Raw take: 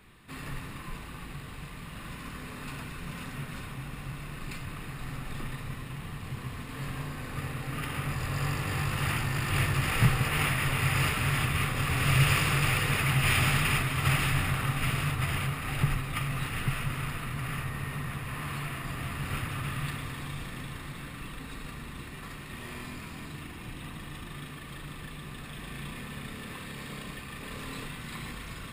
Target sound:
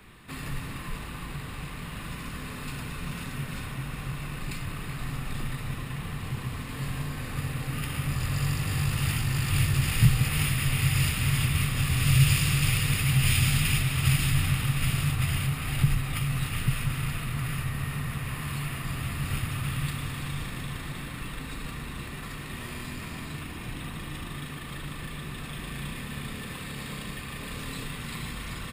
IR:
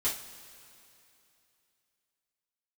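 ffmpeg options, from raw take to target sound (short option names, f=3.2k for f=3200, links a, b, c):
-filter_complex "[0:a]asplit=2[a][b];[b]adelay=380,highpass=300,lowpass=3.4k,asoftclip=type=hard:threshold=-21.5dB,volume=-6dB[c];[a][c]amix=inputs=2:normalize=0,acrossover=split=210|3000[d][e][f];[e]acompressor=threshold=-45dB:ratio=4[g];[d][g][f]amix=inputs=3:normalize=0,volume=5dB"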